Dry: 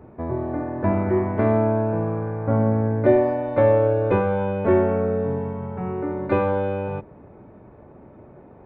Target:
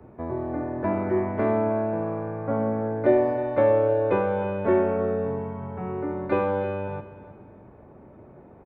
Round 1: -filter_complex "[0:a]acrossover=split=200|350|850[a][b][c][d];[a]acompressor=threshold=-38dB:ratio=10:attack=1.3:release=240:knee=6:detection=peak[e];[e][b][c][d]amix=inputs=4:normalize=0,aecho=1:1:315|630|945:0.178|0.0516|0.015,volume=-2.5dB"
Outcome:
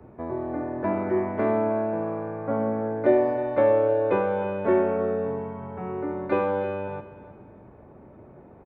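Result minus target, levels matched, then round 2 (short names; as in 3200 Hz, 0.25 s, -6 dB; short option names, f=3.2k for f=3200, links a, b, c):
compressor: peak gain reduction +7 dB
-filter_complex "[0:a]acrossover=split=200|350|850[a][b][c][d];[a]acompressor=threshold=-30.5dB:ratio=10:attack=1.3:release=240:knee=6:detection=peak[e];[e][b][c][d]amix=inputs=4:normalize=0,aecho=1:1:315|630|945:0.178|0.0516|0.015,volume=-2.5dB"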